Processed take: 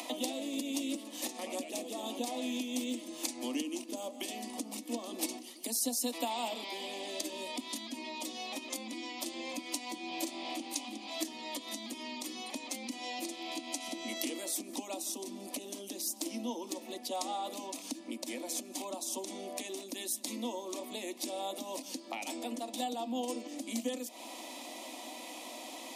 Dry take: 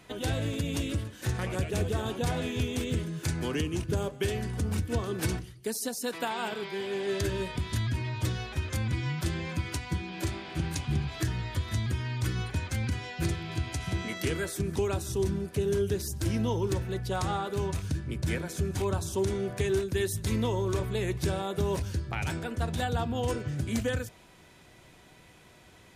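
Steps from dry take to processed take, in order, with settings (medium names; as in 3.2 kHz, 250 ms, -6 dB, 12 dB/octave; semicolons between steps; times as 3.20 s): dynamic bell 1.1 kHz, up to -5 dB, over -44 dBFS, Q 0.71; compression 2.5:1, threshold -39 dBFS, peak gain reduction 10.5 dB; steep high-pass 240 Hz 72 dB/octave; static phaser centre 410 Hz, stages 6; upward compressor, threshold -45 dBFS; trim +8.5 dB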